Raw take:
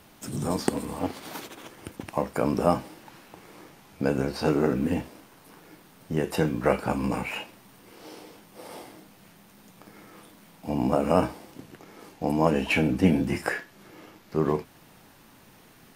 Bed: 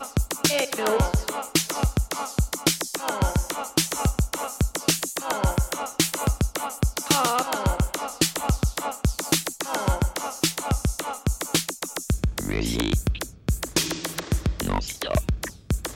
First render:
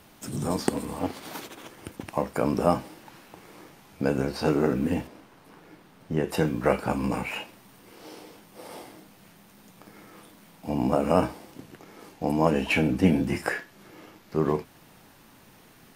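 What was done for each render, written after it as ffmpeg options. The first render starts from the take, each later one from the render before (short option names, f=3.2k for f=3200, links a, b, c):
-filter_complex "[0:a]asettb=1/sr,asplit=3[a][b][c];[a]atrim=end=5.074[d];[b]atrim=start=5.07:end=6.29,asetpts=PTS-STARTPTS,afade=t=in:d=0.004:c=qsin,afade=t=out:st=1.216:d=0.004:c=qsin,aemphasis=mode=reproduction:type=cd[e];[c]atrim=start=6.286[f];[d][e]acrossfade=d=0.004:c1=hsin:c2=qsin[g];[g][f]acrossfade=d=0.004:c1=qsin:c2=hsin"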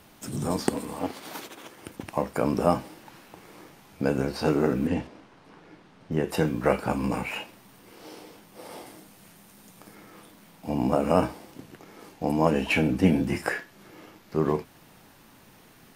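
-filter_complex "[0:a]asettb=1/sr,asplit=3[a][b][c];[a]atrim=end=0.754[d];[b]atrim=start=0.75:end=1.9,asetpts=PTS-STARTPTS,afade=t=in:d=0.004:c=qsin,afade=t=out:st=1.146:d=0.004:c=qsin,lowshelf=f=120:g=-9.5[e];[c]atrim=start=1.896[f];[d][e]acrossfade=d=0.004:c1=hsin:c2=qsin[g];[g][f]acrossfade=d=0.004:c1=qsin:c2=hsin,asettb=1/sr,asplit=3[h][i][j];[h]atrim=end=4.874[k];[i]atrim=start=4.87:end=6.12,asetpts=PTS-STARTPTS,afade=t=in:d=0.004:c=qsin,afade=t=out:st=1.246:d=0.004:c=qsin,lowpass=6.3k[l];[j]atrim=start=6.116[m];[k][l]acrossfade=d=0.004:c1=hsin:c2=qsin[n];[n][m]acrossfade=d=0.004:c1=qsin:c2=hsin,asettb=1/sr,asplit=3[o][p][q];[o]atrim=end=8.864[r];[p]atrim=start=8.86:end=9.95,asetpts=PTS-STARTPTS,afade=t=in:d=0.004:c=qsin,afade=t=out:st=1.086:d=0.004:c=qsin,equalizer=f=10k:w=0.72:g=6[s];[q]atrim=start=9.946[t];[r][s]acrossfade=d=0.004:c1=hsin:c2=qsin[u];[u][t]acrossfade=d=0.004:c1=qsin:c2=hsin"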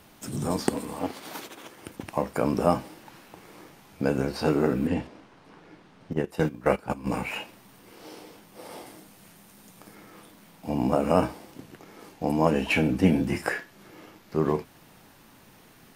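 -filter_complex "[0:a]asettb=1/sr,asplit=3[a][b][c];[a]atrim=end=4.414[d];[b]atrim=start=4.41:end=5.06,asetpts=PTS-STARTPTS,afade=t=in:d=0.004:c=qsin,afade=t=out:st=0.646:d=0.004:c=qsin,bandreject=f=6.1k:w=12[e];[c]atrim=start=5.056[f];[d][e]acrossfade=d=0.004:c1=hsin:c2=qsin[g];[g][f]acrossfade=d=0.004:c1=qsin:c2=hsin,asettb=1/sr,asplit=3[h][i][j];[h]atrim=end=6.134[k];[i]atrim=start=6.13:end=7.07,asetpts=PTS-STARTPTS,afade=t=in:d=0.004:c=qsin,afade=t=out:st=0.936:d=0.004:c=qsin,agate=range=-13dB:threshold=-26dB:ratio=16:release=100:detection=peak[l];[j]atrim=start=7.066[m];[k][l]acrossfade=d=0.004:c1=hsin:c2=qsin[n];[n][m]acrossfade=d=0.004:c1=qsin:c2=hsin"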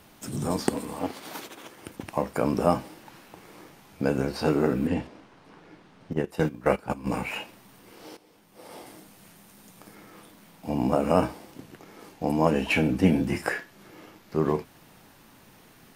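-filter_complex "[0:a]asplit=2[a][b];[a]atrim=end=8.17,asetpts=PTS-STARTPTS,afade=t=out:st=8.166:d=0.004:c=hsin:silence=0.158489[c];[b]atrim=start=8.17,asetpts=PTS-STARTPTS,afade=t=in:d=0.78:silence=0.158489[d];[c][d]concat=n=2:v=0:a=1"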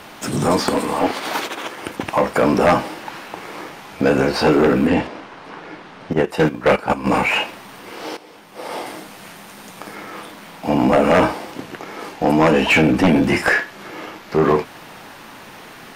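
-filter_complex "[0:a]aeval=exprs='0.473*sin(PI/2*2.51*val(0)/0.473)':c=same,asplit=2[a][b];[b]highpass=f=720:p=1,volume=13dB,asoftclip=type=tanh:threshold=-6.5dB[c];[a][c]amix=inputs=2:normalize=0,lowpass=f=2.7k:p=1,volume=-6dB"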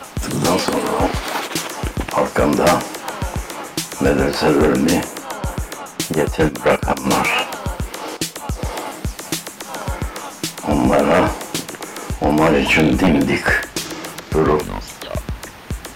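-filter_complex "[1:a]volume=-1.5dB[a];[0:a][a]amix=inputs=2:normalize=0"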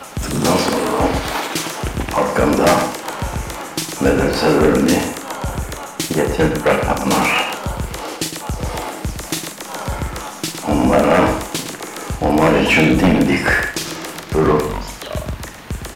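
-filter_complex "[0:a]asplit=2[a][b];[b]adelay=44,volume=-8dB[c];[a][c]amix=inputs=2:normalize=0,asplit=2[d][e];[e]adelay=110.8,volume=-8dB,highshelf=f=4k:g=-2.49[f];[d][f]amix=inputs=2:normalize=0"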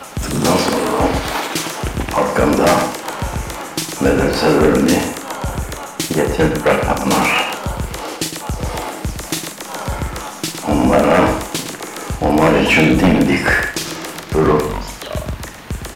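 -af "volume=1dB,alimiter=limit=-2dB:level=0:latency=1"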